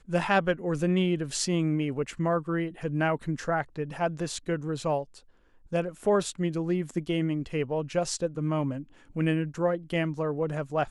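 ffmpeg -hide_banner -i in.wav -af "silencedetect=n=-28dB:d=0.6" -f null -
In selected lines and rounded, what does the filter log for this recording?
silence_start: 5.02
silence_end: 5.73 | silence_duration: 0.71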